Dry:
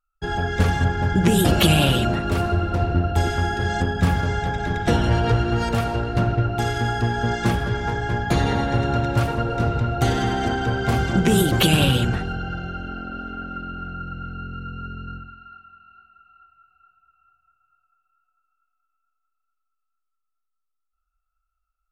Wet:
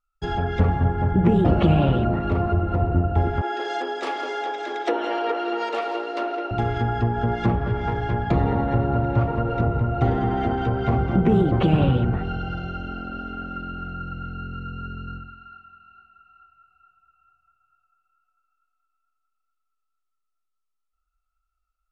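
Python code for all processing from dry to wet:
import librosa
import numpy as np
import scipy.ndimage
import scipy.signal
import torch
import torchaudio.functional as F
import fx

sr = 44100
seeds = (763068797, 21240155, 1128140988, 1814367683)

y = fx.chain(x, sr, fx.steep_highpass(hz=310.0, slope=48),
    fx.echo_single(ms=170, db=-13.5), at=(3.41, 6.51))
y = fx.notch(y, sr, hz=1600.0, q=8.3)
y = fx.env_lowpass_down(y, sr, base_hz=1300.0, full_db=-17.5)
y = fx.high_shelf(y, sr, hz=12000.0, db=-8.5)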